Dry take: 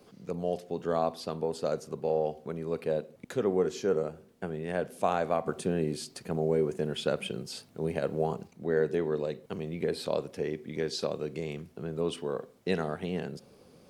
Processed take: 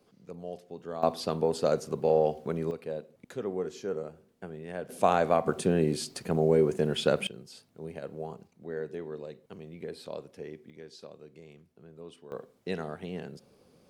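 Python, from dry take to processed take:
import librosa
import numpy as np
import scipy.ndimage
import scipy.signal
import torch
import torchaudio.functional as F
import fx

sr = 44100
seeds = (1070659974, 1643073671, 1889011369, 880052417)

y = fx.gain(x, sr, db=fx.steps((0.0, -8.5), (1.03, 4.5), (2.71, -6.0), (4.89, 4.0), (7.27, -9.0), (10.7, -15.5), (12.32, -4.5)))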